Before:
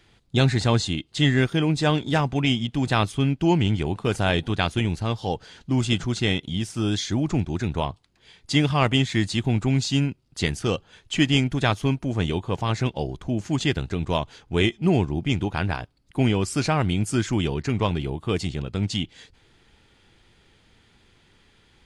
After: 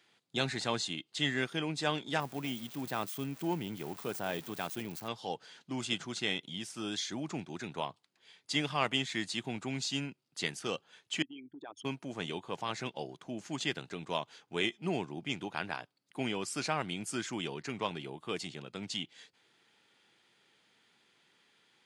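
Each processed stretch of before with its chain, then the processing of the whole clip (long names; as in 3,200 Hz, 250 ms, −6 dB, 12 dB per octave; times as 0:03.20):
0:02.20–0:05.08: spike at every zero crossing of −18 dBFS + de-essing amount 85%
0:11.22–0:11.85: spectral envelope exaggerated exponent 3 + low shelf with overshoot 220 Hz −10.5 dB, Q 3 + downward compressor, threshold −33 dBFS
whole clip: high-pass filter 140 Hz 24 dB per octave; low-shelf EQ 380 Hz −10.5 dB; level −7 dB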